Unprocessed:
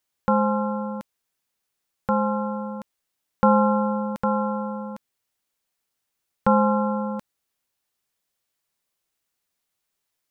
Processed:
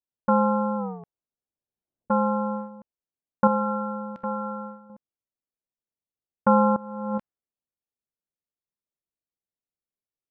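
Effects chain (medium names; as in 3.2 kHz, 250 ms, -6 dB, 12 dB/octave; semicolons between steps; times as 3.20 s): 0.77 s: tape stop 1.33 s; gate -28 dBFS, range -10 dB; level-controlled noise filter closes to 540 Hz, open at -18.5 dBFS; 3.47–4.90 s: feedback comb 65 Hz, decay 1.2 s, harmonics all, mix 60%; 6.76–7.18 s: compressor with a negative ratio -30 dBFS, ratio -0.5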